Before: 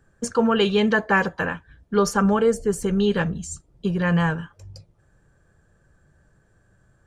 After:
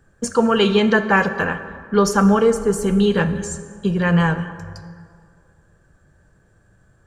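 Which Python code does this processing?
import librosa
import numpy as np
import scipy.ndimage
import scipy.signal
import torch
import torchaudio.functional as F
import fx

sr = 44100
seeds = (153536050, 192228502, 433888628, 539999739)

y = fx.rev_plate(x, sr, seeds[0], rt60_s=2.1, hf_ratio=0.55, predelay_ms=0, drr_db=9.5)
y = y * 10.0 ** (3.5 / 20.0)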